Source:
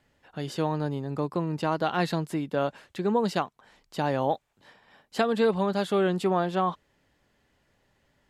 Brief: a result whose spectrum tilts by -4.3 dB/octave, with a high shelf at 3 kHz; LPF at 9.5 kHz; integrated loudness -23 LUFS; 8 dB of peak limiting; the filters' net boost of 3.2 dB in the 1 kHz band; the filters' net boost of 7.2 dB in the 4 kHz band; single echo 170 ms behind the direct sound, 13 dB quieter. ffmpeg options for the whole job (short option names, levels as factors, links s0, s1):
-af "lowpass=9500,equalizer=f=1000:t=o:g=3.5,highshelf=f=3000:g=3.5,equalizer=f=4000:t=o:g=6,alimiter=limit=0.158:level=0:latency=1,aecho=1:1:170:0.224,volume=1.78"